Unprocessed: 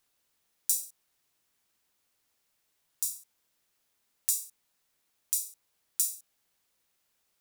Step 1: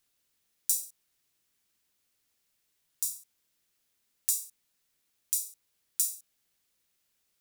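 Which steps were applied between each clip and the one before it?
peaking EQ 850 Hz -6 dB 1.7 oct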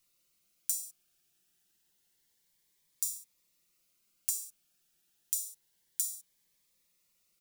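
comb 5.7 ms, depth 56%; compression 6:1, threshold -29 dBFS, peak gain reduction 8.5 dB; Shepard-style phaser rising 0.28 Hz; trim +1 dB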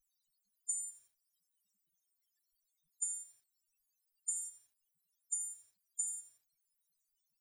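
loudest bins only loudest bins 8; compression 8:1, threshold -39 dBFS, peak gain reduction 6 dB; bit-crushed delay 85 ms, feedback 35%, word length 11-bit, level -15 dB; trim +6 dB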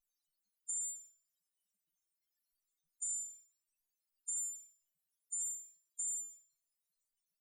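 feedback comb 300 Hz, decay 0.41 s, harmonics all, mix 80%; vibrato 0.56 Hz 6.5 cents; trim +6.5 dB

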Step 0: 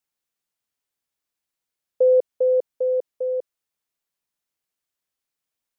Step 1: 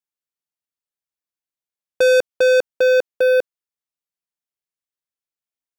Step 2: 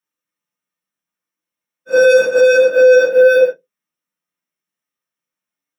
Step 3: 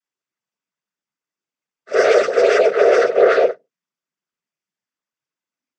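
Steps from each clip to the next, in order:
waveshaping leveller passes 5
phase randomisation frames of 200 ms; peak limiter -16 dBFS, peak gain reduction 9.5 dB; reverberation RT60 0.15 s, pre-delay 3 ms, DRR 0.5 dB; trim +3.5 dB
noise-vocoded speech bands 16; in parallel at -9 dB: saturation -15 dBFS, distortion -7 dB; on the sum: trim -4.5 dB

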